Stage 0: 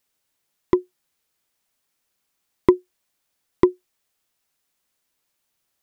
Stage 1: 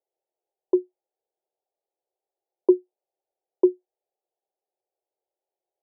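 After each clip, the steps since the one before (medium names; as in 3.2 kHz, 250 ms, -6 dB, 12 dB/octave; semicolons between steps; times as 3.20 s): elliptic band-pass 360–810 Hz, stop band 40 dB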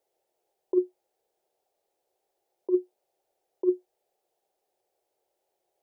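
compressor with a negative ratio -26 dBFS, ratio -1; trim +3 dB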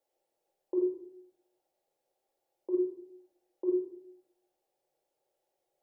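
simulated room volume 1000 m³, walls furnished, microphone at 2.3 m; trim -6 dB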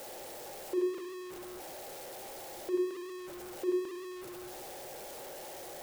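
jump at every zero crossing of -35.5 dBFS; trim -3 dB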